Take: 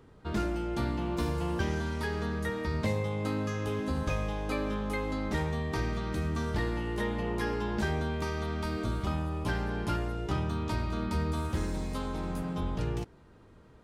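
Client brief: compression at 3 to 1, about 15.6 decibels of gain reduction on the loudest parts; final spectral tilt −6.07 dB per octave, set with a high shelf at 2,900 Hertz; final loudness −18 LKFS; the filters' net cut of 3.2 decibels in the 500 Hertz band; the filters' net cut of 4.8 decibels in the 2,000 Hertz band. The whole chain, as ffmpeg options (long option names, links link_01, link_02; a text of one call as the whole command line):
ffmpeg -i in.wav -af "equalizer=frequency=500:width_type=o:gain=-4,equalizer=frequency=2000:width_type=o:gain=-7.5,highshelf=frequency=2900:gain=4.5,acompressor=threshold=-49dB:ratio=3,volume=30dB" out.wav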